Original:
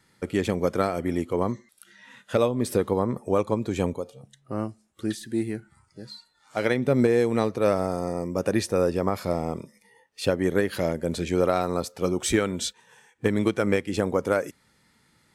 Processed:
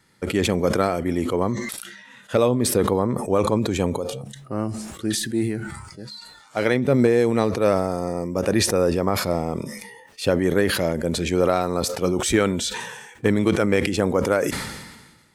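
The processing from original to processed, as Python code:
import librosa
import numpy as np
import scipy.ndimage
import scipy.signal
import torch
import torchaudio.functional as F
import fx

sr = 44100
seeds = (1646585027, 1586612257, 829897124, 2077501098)

y = fx.sustainer(x, sr, db_per_s=44.0)
y = F.gain(torch.from_numpy(y), 2.5).numpy()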